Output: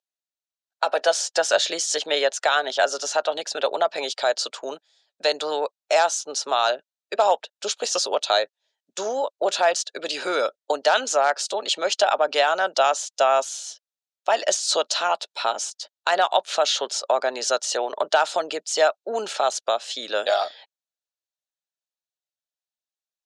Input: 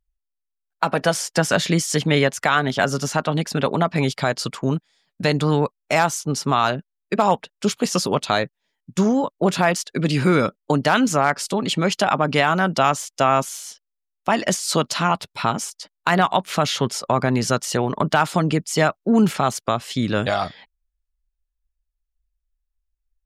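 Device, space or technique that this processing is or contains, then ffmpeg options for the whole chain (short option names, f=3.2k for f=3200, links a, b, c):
phone speaker on a table: -af "highpass=f=490:w=0.5412,highpass=f=490:w=1.3066,equalizer=f=610:t=q:w=4:g=4,equalizer=f=1.1k:t=q:w=4:g=-8,equalizer=f=2.1k:t=q:w=4:g=-9,equalizer=f=3.9k:t=q:w=4:g=5,equalizer=f=6.4k:t=q:w=4:g=3,lowpass=f=8.2k:w=0.5412,lowpass=f=8.2k:w=1.3066"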